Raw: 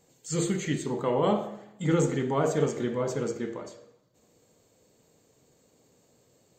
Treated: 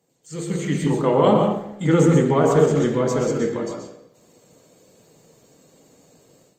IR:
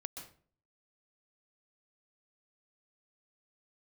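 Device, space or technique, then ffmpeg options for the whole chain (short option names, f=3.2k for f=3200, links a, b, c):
far-field microphone of a smart speaker: -filter_complex "[0:a]asplit=3[a][b][c];[a]afade=t=out:st=1.33:d=0.02[d];[b]highpass=f=53:w=0.5412,highpass=f=53:w=1.3066,afade=t=in:st=1.33:d=0.02,afade=t=out:st=1.88:d=0.02[e];[c]afade=t=in:st=1.88:d=0.02[f];[d][e][f]amix=inputs=3:normalize=0[g];[1:a]atrim=start_sample=2205[h];[g][h]afir=irnorm=-1:irlink=0,highpass=f=110:w=0.5412,highpass=f=110:w=1.3066,dynaudnorm=f=460:g=3:m=12.5dB" -ar 48000 -c:a libopus -b:a 32k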